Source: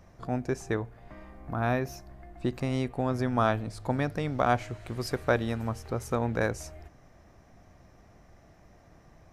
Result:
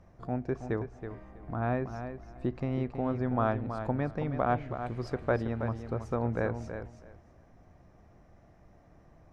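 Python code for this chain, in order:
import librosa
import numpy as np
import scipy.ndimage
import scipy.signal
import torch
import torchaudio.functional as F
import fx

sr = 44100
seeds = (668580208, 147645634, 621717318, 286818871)

y = fx.env_lowpass_down(x, sr, base_hz=2900.0, full_db=-25.0)
y = fx.high_shelf(y, sr, hz=2100.0, db=-10.0)
y = fx.echo_feedback(y, sr, ms=324, feedback_pct=17, wet_db=-9)
y = y * 10.0 ** (-2.0 / 20.0)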